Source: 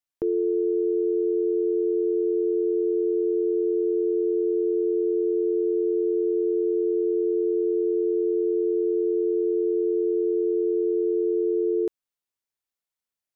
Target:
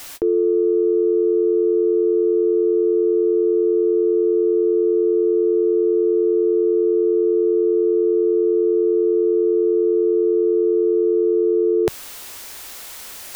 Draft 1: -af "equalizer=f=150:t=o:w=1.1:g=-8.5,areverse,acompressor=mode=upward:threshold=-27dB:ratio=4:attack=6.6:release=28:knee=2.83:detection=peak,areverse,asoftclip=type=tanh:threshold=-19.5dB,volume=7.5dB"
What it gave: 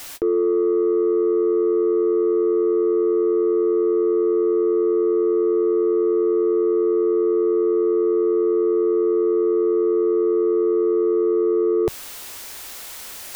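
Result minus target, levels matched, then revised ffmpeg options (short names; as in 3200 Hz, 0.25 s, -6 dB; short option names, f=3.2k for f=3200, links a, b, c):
soft clip: distortion +20 dB
-af "equalizer=f=150:t=o:w=1.1:g=-8.5,areverse,acompressor=mode=upward:threshold=-27dB:ratio=4:attack=6.6:release=28:knee=2.83:detection=peak,areverse,asoftclip=type=tanh:threshold=-8.5dB,volume=7.5dB"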